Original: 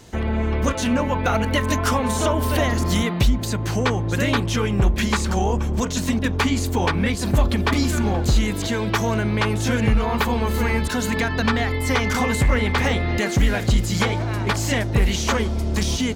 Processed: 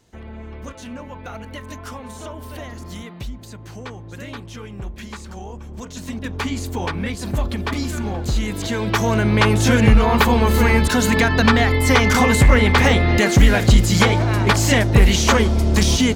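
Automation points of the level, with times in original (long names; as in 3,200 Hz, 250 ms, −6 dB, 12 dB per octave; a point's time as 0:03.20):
0:05.60 −13.5 dB
0:06.47 −4 dB
0:08.22 −4 dB
0:09.43 +6 dB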